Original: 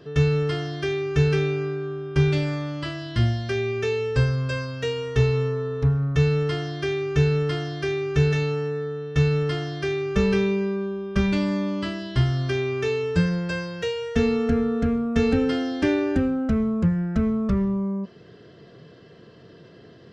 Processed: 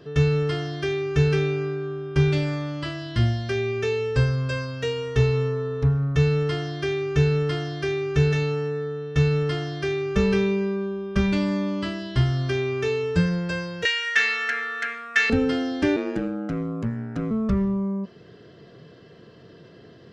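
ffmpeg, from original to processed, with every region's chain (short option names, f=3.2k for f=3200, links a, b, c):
-filter_complex "[0:a]asettb=1/sr,asplit=3[a][b][c];[a]atrim=end=13.854[d];[b]atrim=start=13.85:end=15.3,asetpts=PTS-STARTPTS,afade=t=in:d=0.004:c=qsin,afade=t=out:st=1.446:d=0.004:c=qsin,acontrast=82,highpass=f=1.8k:t=q:w=4.2[e];[c]atrim=start=15.296[f];[d][e]acrossfade=d=0.004:c1=hsin:c2=qsin[g];[g][f]acrossfade=d=0.004:c1=qsin:c2=hsin,asettb=1/sr,asplit=3[h][i][j];[h]atrim=end=15.964[k];[i]atrim=start=15.96:end=17.31,asetpts=PTS-STARTPTS,afade=t=in:d=0.004:c=qsin,afade=t=out:st=1.346:d=0.004:c=qsin,highpass=110,lowshelf=f=190:g=-5,aeval=exprs='val(0)*sin(2*PI*55*n/s)':c=same[l];[j]atrim=start=17.306[m];[k][l]acrossfade=d=0.004:c1=hsin:c2=qsin[n];[n][m]acrossfade=d=0.004:c1=qsin:c2=hsin"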